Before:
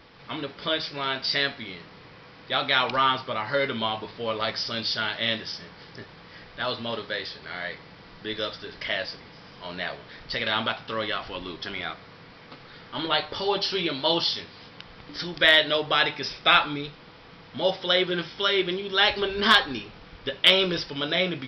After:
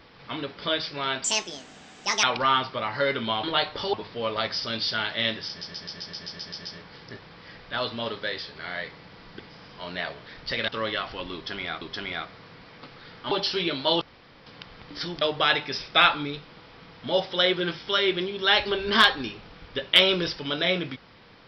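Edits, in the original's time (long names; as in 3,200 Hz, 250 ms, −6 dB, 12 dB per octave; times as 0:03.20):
0:01.24–0:02.77: play speed 154%
0:05.52: stutter 0.13 s, 10 plays
0:08.26–0:09.22: remove
0:10.51–0:10.84: remove
0:11.50–0:11.97: repeat, 2 plays
0:13.00–0:13.50: move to 0:03.97
0:14.20–0:14.65: fill with room tone
0:15.40–0:15.72: remove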